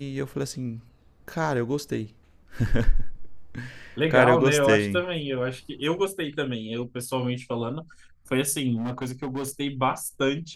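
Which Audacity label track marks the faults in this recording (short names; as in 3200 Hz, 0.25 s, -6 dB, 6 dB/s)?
8.760000	9.510000	clipped -26 dBFS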